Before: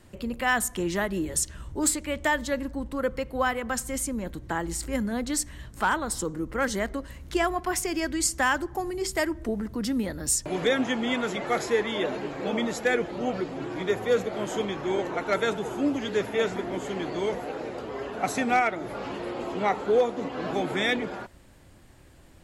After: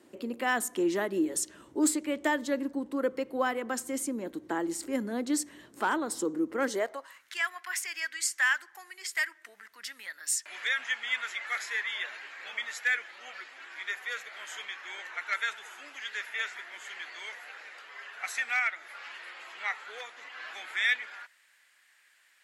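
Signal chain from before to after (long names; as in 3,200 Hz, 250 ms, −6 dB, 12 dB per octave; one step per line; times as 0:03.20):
high-pass filter sweep 310 Hz → 1,800 Hz, 0:06.66–0:07.29
level −5 dB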